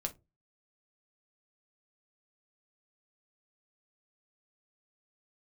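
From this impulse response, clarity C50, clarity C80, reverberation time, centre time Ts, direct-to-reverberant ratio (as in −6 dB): 18.5 dB, 29.0 dB, non-exponential decay, 7 ms, 3.5 dB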